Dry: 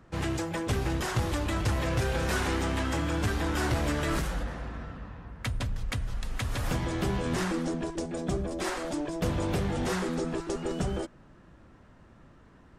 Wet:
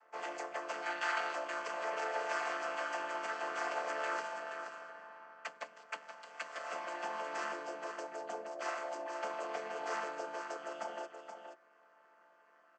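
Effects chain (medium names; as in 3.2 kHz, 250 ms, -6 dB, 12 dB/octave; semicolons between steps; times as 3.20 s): vocoder on a held chord minor triad, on D3; peaking EQ 3.7 kHz -11 dB 0.27 oct; on a send: delay 476 ms -8 dB; on the sum: time-frequency box 0.83–1.33 s, 1.2–4.8 kHz +7 dB; high-pass 630 Hz 24 dB/octave; trim +4 dB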